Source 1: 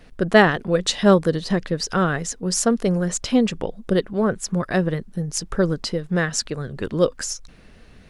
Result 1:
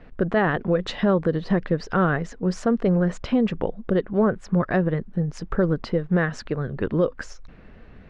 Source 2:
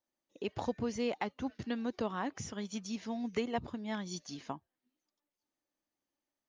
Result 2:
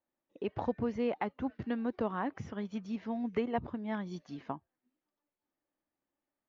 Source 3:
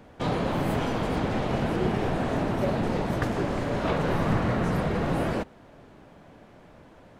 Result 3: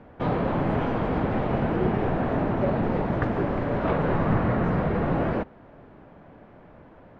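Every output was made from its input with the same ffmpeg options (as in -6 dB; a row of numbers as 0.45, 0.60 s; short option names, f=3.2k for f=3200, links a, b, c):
-af "lowpass=2k,alimiter=limit=-13.5dB:level=0:latency=1:release=138,volume=2dB"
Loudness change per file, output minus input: -2.0, +1.5, +2.0 LU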